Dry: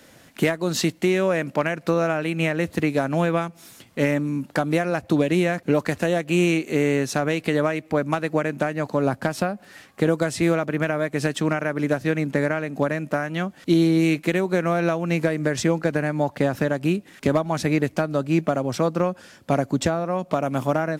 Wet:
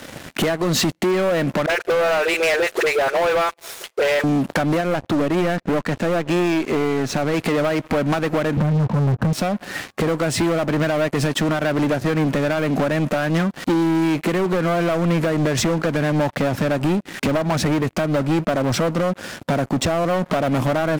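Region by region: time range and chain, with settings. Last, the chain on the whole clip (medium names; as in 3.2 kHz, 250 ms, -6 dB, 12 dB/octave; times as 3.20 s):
1.66–4.24 s: brick-wall FIR high-pass 350 Hz + phase dispersion highs, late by 40 ms, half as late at 790 Hz
4.81–7.34 s: valve stage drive 13 dB, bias 0.75 + distance through air 62 m
8.57–9.33 s: resonant low shelf 240 Hz +13.5 dB, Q 1.5 + compression 1.5:1, threshold -23 dBFS + resonant low-pass 1.1 kHz, resonance Q 1.6
whole clip: treble shelf 3.9 kHz -6.5 dB; compression 5:1, threshold -28 dBFS; waveshaping leveller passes 5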